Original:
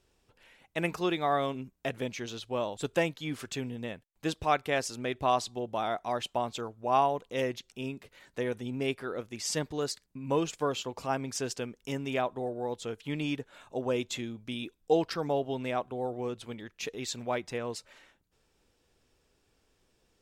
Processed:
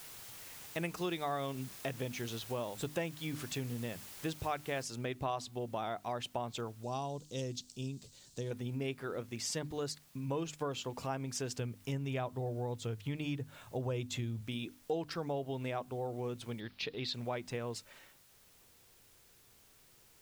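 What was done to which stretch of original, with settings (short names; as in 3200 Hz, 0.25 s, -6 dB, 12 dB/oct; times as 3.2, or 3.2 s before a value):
0.83–1.78 high shelf 4200 Hz +6 dB
4.83 noise floor step -49 dB -63 dB
6.83–8.51 EQ curve 170 Hz 0 dB, 2100 Hz -15 dB, 4300 Hz +6 dB, 7700 Hz +8 dB, 11000 Hz -7 dB
11.51–14.41 bell 100 Hz +11.5 dB 0.84 oct
16.6–17.14 resonant high shelf 5500 Hz -9 dB, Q 3
whole clip: bell 120 Hz +6.5 dB 1.3 oct; notches 50/100/150/200/250/300 Hz; compressor 2.5:1, threshold -35 dBFS; gain -1.5 dB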